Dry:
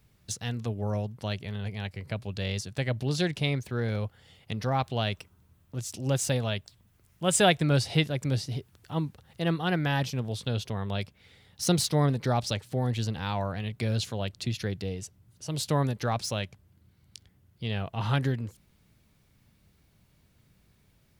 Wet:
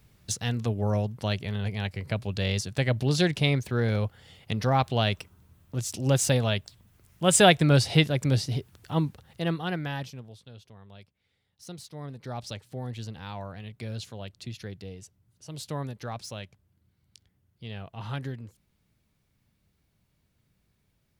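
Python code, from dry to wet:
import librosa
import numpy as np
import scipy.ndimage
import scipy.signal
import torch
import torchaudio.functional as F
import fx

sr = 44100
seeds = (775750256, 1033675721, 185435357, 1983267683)

y = fx.gain(x, sr, db=fx.line((9.07, 4.0), (10.02, -7.0), (10.46, -18.0), (11.89, -18.0), (12.46, -7.5)))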